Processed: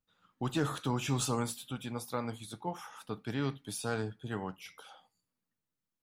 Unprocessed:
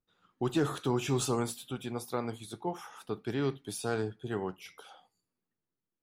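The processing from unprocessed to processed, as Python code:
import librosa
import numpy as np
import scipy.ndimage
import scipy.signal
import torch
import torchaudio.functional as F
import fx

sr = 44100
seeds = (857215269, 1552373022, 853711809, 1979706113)

y = fx.peak_eq(x, sr, hz=380.0, db=-10.5, octaves=0.35)
y = fx.notch(y, sr, hz=720.0, q=15.0)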